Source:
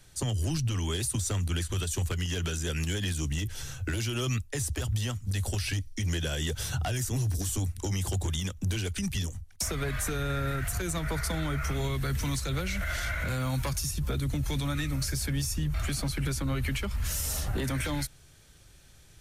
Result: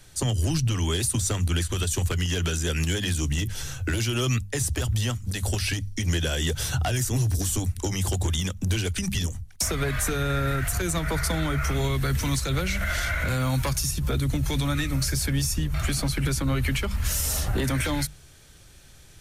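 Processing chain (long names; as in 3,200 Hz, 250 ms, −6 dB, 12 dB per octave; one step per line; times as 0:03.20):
mains-hum notches 50/100/150/200 Hz
level +5.5 dB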